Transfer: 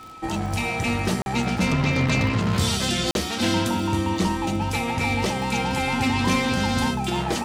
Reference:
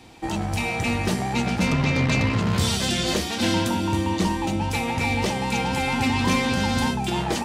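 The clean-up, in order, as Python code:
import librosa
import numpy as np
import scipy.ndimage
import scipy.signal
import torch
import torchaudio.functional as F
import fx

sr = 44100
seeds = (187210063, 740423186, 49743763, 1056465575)

y = fx.fix_declick_ar(x, sr, threshold=6.5)
y = fx.notch(y, sr, hz=1300.0, q=30.0)
y = fx.fix_interpolate(y, sr, at_s=(1.22, 3.11), length_ms=41.0)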